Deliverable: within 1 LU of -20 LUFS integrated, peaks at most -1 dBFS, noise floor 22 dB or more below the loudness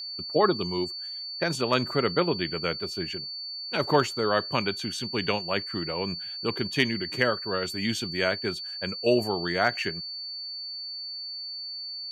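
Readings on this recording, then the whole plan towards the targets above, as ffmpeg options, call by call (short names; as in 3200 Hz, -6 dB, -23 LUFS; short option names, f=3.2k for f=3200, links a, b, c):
steady tone 4500 Hz; tone level -34 dBFS; loudness -28.0 LUFS; peak -9.5 dBFS; loudness target -20.0 LUFS
-> -af "bandreject=f=4.5k:w=30"
-af "volume=8dB"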